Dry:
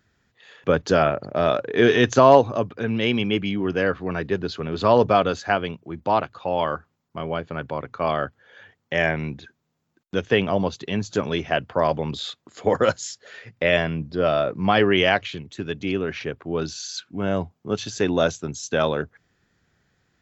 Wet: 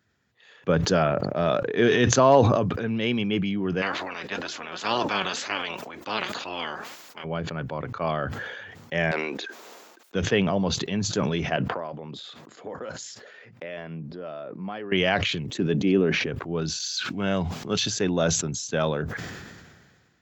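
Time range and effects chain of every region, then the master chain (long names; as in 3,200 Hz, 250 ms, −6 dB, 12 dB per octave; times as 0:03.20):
0:03.81–0:07.23: ceiling on every frequency bin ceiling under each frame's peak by 25 dB + flanger 2 Hz, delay 2.7 ms, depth 2.9 ms, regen +48% + high-pass filter 270 Hz 6 dB per octave
0:09.11–0:10.15: high-pass filter 380 Hz 24 dB per octave + saturating transformer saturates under 1,800 Hz
0:11.56–0:14.92: high-pass filter 160 Hz + high-shelf EQ 3,000 Hz −9.5 dB + downward compressor 3 to 1, threshold −32 dBFS
0:15.48–0:16.26: high-pass filter 130 Hz + parametric band 310 Hz +8.5 dB 2.4 octaves + notch filter 1,400 Hz, Q 24
0:16.80–0:17.86: de-essing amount 75% + parametric band 3,800 Hz +10 dB 2.8 octaves
whole clip: dynamic equaliser 170 Hz, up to +6 dB, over −39 dBFS, Q 2.5; high-pass filter 77 Hz; level that may fall only so fast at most 34 dB per second; level −4.5 dB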